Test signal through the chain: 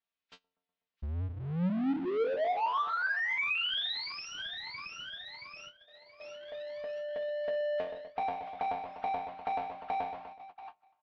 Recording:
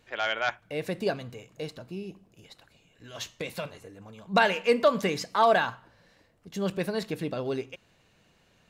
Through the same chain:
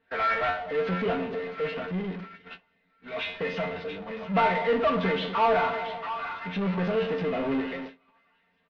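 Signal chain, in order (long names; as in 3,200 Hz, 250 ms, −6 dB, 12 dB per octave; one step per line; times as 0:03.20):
hearing-aid frequency compression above 1,200 Hz 1.5 to 1
low-shelf EQ 69 Hz −12 dB
tuned comb filter 90 Hz, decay 0.26 s, harmonics all, mix 90%
on a send: echo with a time of its own for lows and highs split 1,000 Hz, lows 124 ms, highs 676 ms, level −15 dB
on the sum: noise gate −56 dBFS, range −54 dB
comb filter 4.4 ms, depth 97%
power curve on the samples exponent 0.5
low-pass filter 3,600 Hz 24 dB per octave
level −2 dB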